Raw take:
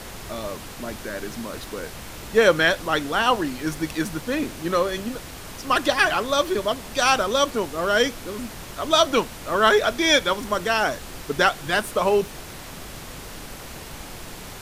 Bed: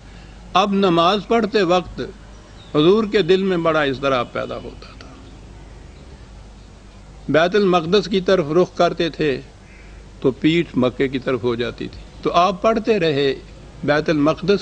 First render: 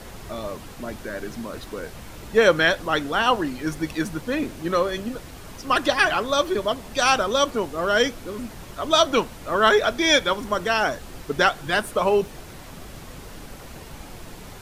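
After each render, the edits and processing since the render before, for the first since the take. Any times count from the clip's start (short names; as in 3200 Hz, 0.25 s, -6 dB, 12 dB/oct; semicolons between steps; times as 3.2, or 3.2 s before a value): denoiser 6 dB, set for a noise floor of -38 dBFS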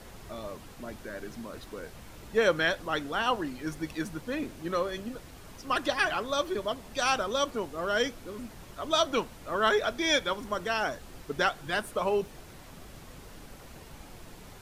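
gain -8 dB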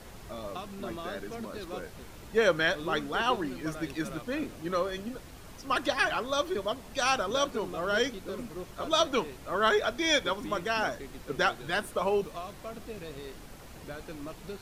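add bed -25.5 dB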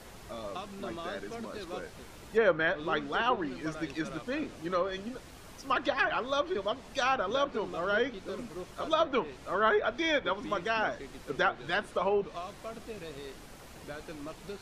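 treble ducked by the level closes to 2000 Hz, closed at -22.5 dBFS; low shelf 210 Hz -4.5 dB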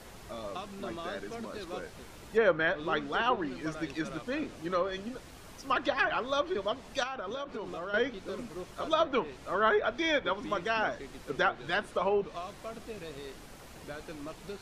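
7.03–7.94 compressor 5:1, threshold -34 dBFS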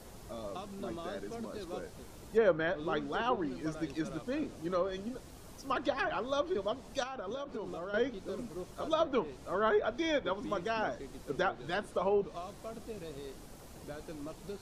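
bell 2100 Hz -8 dB 2.2 oct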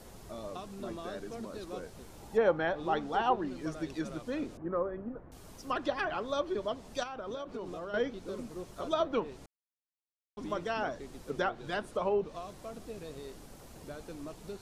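2.15–3.34 bell 810 Hz +11.5 dB 0.26 oct; 4.57–5.32 LPF 1600 Hz 24 dB/oct; 9.46–10.37 mute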